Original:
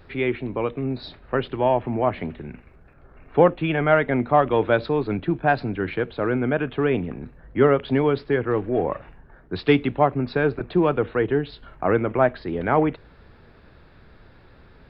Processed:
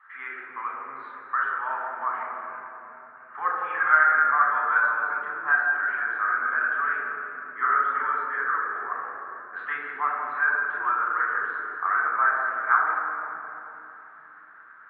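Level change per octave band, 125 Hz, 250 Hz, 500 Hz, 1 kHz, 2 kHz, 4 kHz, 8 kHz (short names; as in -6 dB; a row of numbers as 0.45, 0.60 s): under -35 dB, -29.0 dB, -22.0 dB, +2.5 dB, +7.5 dB, under -20 dB, n/a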